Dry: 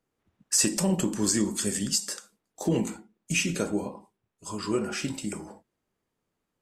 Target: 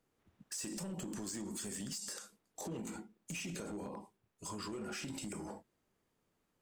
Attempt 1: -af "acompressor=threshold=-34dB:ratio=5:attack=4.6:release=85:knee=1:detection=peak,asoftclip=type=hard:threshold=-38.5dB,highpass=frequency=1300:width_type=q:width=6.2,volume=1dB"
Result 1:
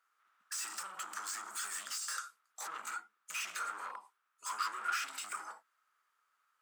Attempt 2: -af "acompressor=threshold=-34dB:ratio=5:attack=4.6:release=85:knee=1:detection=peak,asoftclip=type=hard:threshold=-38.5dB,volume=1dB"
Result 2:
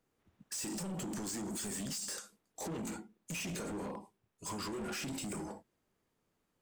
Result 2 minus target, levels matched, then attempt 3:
downward compressor: peak gain reduction −6.5 dB
-af "acompressor=threshold=-42dB:ratio=5:attack=4.6:release=85:knee=1:detection=peak,asoftclip=type=hard:threshold=-38.5dB,volume=1dB"

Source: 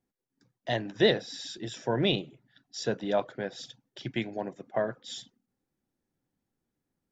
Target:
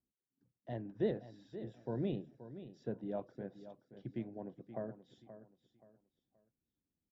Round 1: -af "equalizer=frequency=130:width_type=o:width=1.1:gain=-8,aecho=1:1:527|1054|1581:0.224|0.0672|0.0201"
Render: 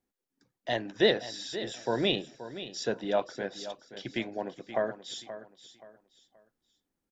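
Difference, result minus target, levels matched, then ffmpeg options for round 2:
125 Hz band −9.0 dB
-af "bandpass=frequency=100:width_type=q:width=0.8:csg=0,equalizer=frequency=130:width_type=o:width=1.1:gain=-8,aecho=1:1:527|1054|1581:0.224|0.0672|0.0201"

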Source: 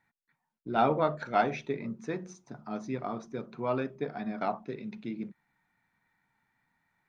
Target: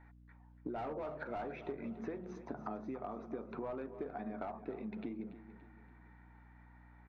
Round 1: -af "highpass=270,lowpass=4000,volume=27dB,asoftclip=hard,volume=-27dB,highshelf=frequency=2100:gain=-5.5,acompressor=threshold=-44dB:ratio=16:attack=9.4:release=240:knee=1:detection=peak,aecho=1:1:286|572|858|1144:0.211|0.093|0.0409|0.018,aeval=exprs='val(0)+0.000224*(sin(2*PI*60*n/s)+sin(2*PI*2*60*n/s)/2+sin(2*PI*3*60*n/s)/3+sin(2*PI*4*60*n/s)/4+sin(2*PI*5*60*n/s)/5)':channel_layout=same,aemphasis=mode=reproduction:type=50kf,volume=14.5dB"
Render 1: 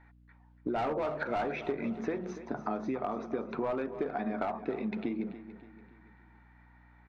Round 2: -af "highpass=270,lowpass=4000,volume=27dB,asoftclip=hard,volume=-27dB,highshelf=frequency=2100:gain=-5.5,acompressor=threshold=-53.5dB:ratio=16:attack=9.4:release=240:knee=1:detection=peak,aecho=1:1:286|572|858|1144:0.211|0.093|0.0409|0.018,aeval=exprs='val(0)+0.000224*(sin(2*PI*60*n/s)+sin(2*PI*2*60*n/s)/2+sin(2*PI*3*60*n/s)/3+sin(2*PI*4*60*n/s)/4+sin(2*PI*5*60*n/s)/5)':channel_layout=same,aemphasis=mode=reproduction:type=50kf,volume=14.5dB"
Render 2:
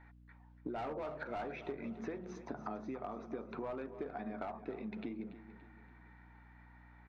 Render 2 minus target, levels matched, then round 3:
4,000 Hz band +4.5 dB
-af "highpass=270,lowpass=4000,volume=27dB,asoftclip=hard,volume=-27dB,highshelf=frequency=2100:gain=-13,acompressor=threshold=-53.5dB:ratio=16:attack=9.4:release=240:knee=1:detection=peak,aecho=1:1:286|572|858|1144:0.211|0.093|0.0409|0.018,aeval=exprs='val(0)+0.000224*(sin(2*PI*60*n/s)+sin(2*PI*2*60*n/s)/2+sin(2*PI*3*60*n/s)/3+sin(2*PI*4*60*n/s)/4+sin(2*PI*5*60*n/s)/5)':channel_layout=same,aemphasis=mode=reproduction:type=50kf,volume=14.5dB"

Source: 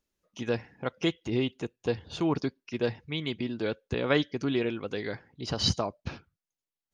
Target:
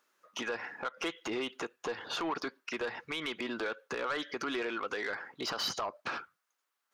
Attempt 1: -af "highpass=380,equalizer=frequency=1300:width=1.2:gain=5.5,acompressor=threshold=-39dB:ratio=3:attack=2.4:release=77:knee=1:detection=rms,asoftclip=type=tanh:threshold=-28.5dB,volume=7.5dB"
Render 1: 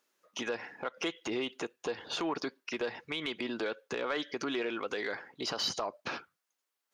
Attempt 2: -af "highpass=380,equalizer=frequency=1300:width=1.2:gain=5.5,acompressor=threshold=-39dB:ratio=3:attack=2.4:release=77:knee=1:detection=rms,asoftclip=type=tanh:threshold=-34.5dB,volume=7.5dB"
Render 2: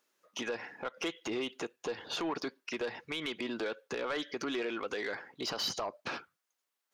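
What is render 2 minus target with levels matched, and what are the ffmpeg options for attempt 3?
1,000 Hz band −2.5 dB
-af "highpass=380,equalizer=frequency=1300:width=1.2:gain=13.5,acompressor=threshold=-39dB:ratio=3:attack=2.4:release=77:knee=1:detection=rms,asoftclip=type=tanh:threshold=-34.5dB,volume=7.5dB"

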